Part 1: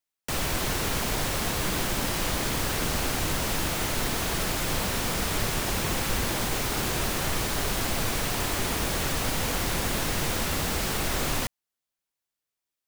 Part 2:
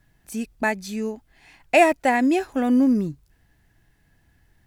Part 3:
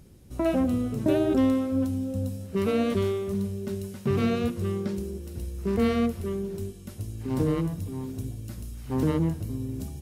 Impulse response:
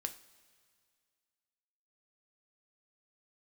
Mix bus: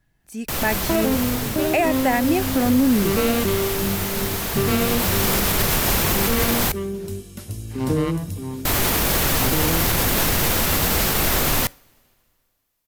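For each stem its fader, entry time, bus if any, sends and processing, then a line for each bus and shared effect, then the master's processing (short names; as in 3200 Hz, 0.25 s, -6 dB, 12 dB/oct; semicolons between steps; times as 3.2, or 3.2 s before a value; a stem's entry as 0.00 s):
-0.5 dB, 0.20 s, muted 6.72–8.65, send -13.5 dB, bell 13000 Hz +10.5 dB 0.28 oct; auto duck -12 dB, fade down 1.00 s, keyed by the second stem
-5.5 dB, 0.00 s, no send, dry
-2.5 dB, 0.50 s, no send, tilt shelf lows -3 dB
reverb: on, pre-delay 3 ms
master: AGC gain up to 9 dB; limiter -9.5 dBFS, peak gain reduction 7 dB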